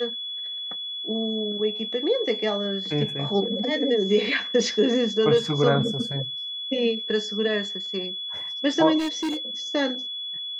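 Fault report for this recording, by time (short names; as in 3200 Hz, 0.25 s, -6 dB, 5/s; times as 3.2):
tone 3400 Hz -30 dBFS
8.98–9.37 clipped -23.5 dBFS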